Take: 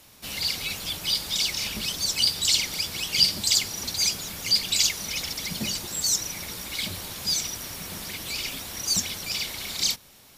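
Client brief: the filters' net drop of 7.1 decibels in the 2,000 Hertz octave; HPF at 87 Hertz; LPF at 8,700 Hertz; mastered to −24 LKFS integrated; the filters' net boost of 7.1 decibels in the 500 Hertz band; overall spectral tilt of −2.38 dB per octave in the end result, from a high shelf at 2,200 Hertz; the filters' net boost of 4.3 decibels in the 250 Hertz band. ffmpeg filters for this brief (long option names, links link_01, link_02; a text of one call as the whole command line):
ffmpeg -i in.wav -af "highpass=87,lowpass=8700,equalizer=frequency=250:width_type=o:gain=4,equalizer=frequency=500:width_type=o:gain=8.5,equalizer=frequency=2000:width_type=o:gain=-4,highshelf=frequency=2200:gain=-8,volume=8dB" out.wav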